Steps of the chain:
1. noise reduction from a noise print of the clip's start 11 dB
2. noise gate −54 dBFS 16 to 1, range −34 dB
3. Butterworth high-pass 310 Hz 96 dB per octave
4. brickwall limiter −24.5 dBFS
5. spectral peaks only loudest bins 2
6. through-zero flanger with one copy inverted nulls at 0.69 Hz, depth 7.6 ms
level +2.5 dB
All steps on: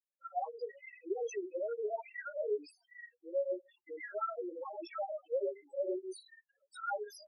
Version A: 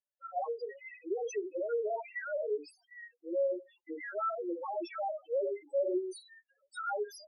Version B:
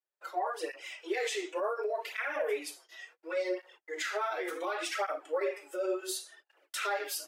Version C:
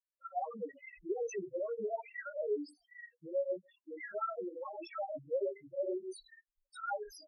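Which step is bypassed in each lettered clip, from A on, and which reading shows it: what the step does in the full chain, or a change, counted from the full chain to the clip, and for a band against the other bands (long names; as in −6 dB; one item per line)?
6, 250 Hz band +2.0 dB
5, 2 kHz band +7.0 dB
3, 250 Hz band +2.0 dB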